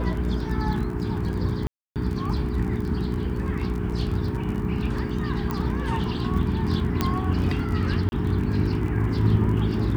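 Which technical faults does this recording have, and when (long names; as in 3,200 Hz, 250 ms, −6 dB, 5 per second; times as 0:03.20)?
surface crackle 30 per second −31 dBFS
mains hum 60 Hz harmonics 7 −29 dBFS
0:01.67–0:01.96: drop-out 288 ms
0:05.51: click −15 dBFS
0:07.01: click −8 dBFS
0:08.09–0:08.12: drop-out 31 ms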